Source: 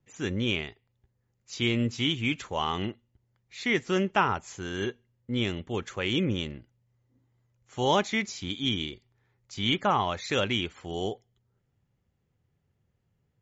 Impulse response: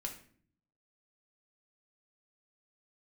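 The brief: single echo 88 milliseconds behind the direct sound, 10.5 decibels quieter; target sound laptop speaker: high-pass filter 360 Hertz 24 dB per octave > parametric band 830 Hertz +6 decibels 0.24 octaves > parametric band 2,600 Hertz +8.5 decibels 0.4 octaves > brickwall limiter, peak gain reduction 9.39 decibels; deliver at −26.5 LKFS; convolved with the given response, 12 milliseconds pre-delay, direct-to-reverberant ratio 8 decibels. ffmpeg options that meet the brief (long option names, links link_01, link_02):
-filter_complex "[0:a]aecho=1:1:88:0.299,asplit=2[link_01][link_02];[1:a]atrim=start_sample=2205,adelay=12[link_03];[link_02][link_03]afir=irnorm=-1:irlink=0,volume=-7dB[link_04];[link_01][link_04]amix=inputs=2:normalize=0,highpass=frequency=360:width=0.5412,highpass=frequency=360:width=1.3066,equalizer=frequency=830:width_type=o:width=0.24:gain=6,equalizer=frequency=2600:width_type=o:width=0.4:gain=8.5,volume=2.5dB,alimiter=limit=-14dB:level=0:latency=1"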